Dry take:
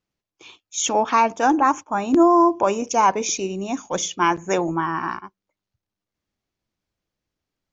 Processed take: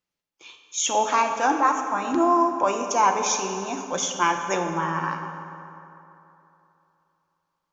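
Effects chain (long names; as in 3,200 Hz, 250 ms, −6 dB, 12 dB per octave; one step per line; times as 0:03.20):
low-shelf EQ 410 Hz −9.5 dB
on a send: convolution reverb RT60 3.1 s, pre-delay 3 ms, DRR 3.5 dB
on the sum: level −1.5 dB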